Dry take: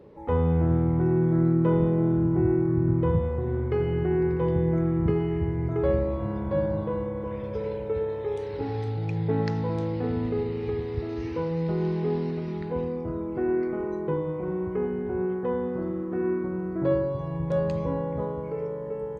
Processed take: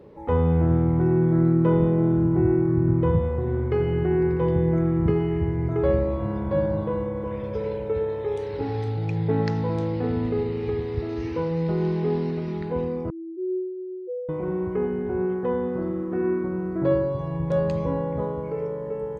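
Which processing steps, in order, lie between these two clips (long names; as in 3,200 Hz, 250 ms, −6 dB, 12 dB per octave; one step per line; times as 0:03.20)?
0:13.10–0:14.29: spectral peaks only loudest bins 1
level +2.5 dB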